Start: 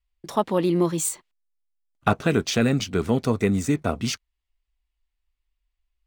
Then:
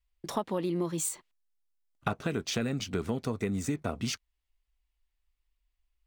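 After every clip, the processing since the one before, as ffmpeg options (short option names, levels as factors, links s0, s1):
-af "acompressor=threshold=0.0398:ratio=4,volume=0.891"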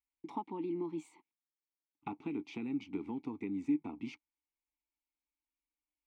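-filter_complex "[0:a]asplit=3[s0][s1][s2];[s0]bandpass=f=300:t=q:w=8,volume=1[s3];[s1]bandpass=f=870:t=q:w=8,volume=0.501[s4];[s2]bandpass=f=2240:t=q:w=8,volume=0.355[s5];[s3][s4][s5]amix=inputs=3:normalize=0,bass=f=250:g=0,treble=f=4000:g=-3,volume=1.58"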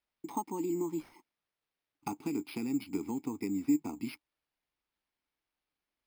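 -af "acrusher=samples=6:mix=1:aa=0.000001,volume=1.58"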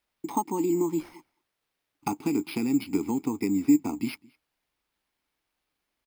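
-filter_complex "[0:a]asplit=2[s0][s1];[s1]adelay=209.9,volume=0.0501,highshelf=f=4000:g=-4.72[s2];[s0][s2]amix=inputs=2:normalize=0,volume=2.51"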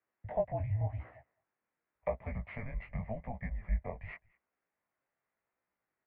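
-af "highpass=f=390:t=q:w=0.5412,highpass=f=390:t=q:w=1.307,lowpass=f=2400:t=q:w=0.5176,lowpass=f=2400:t=q:w=0.7071,lowpass=f=2400:t=q:w=1.932,afreqshift=-240,flanger=delay=15.5:depth=6.8:speed=0.89"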